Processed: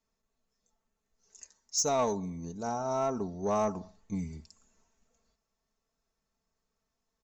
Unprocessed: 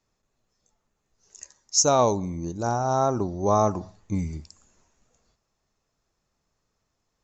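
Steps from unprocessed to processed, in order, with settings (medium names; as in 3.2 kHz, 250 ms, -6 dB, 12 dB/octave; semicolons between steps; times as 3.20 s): comb 4.5 ms, depth 61%; saturation -11 dBFS, distortion -18 dB; trim -8.5 dB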